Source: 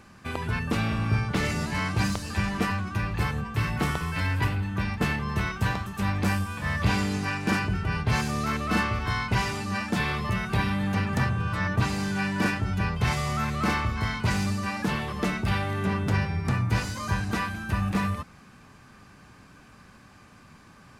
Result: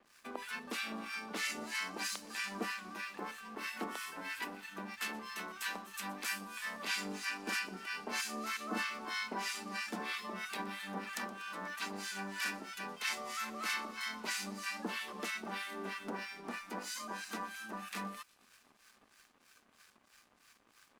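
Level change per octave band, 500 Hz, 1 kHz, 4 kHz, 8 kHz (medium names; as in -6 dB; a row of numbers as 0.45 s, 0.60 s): -12.5 dB, -11.5 dB, -6.0 dB, -3.5 dB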